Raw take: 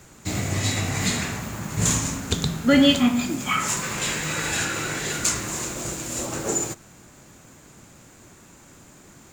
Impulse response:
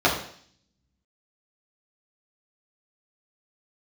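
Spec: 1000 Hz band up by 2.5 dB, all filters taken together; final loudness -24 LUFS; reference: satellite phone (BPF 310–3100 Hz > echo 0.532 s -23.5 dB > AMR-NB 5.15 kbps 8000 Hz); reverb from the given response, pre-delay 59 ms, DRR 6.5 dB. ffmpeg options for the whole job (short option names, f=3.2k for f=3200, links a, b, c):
-filter_complex "[0:a]equalizer=f=1k:t=o:g=3.5,asplit=2[a][b];[1:a]atrim=start_sample=2205,adelay=59[c];[b][c]afir=irnorm=-1:irlink=0,volume=-25.5dB[d];[a][d]amix=inputs=2:normalize=0,highpass=310,lowpass=3.1k,aecho=1:1:532:0.0668,volume=4.5dB" -ar 8000 -c:a libopencore_amrnb -b:a 5150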